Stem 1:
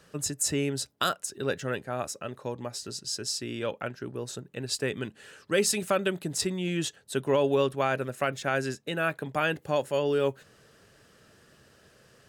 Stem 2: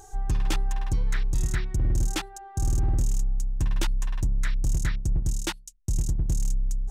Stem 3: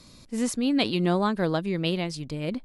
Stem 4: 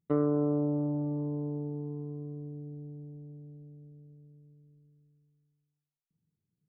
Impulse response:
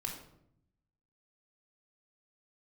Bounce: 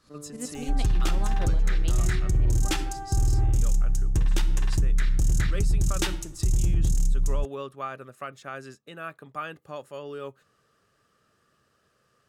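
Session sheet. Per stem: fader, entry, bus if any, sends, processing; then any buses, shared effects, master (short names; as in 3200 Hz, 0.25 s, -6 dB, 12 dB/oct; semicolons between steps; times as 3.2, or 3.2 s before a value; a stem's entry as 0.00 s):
-11.5 dB, 0.00 s, no send, bell 1200 Hz +14 dB 0.2 oct
+2.0 dB, 0.55 s, send -5.5 dB, bell 1000 Hz -3.5 dB 0.39 oct
-8.0 dB, 0.00 s, no send, tremolo saw up 11 Hz, depth 80%
-19.0 dB, 0.00 s, no send, dry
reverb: on, RT60 0.70 s, pre-delay 3 ms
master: limiter -16 dBFS, peak gain reduction 8.5 dB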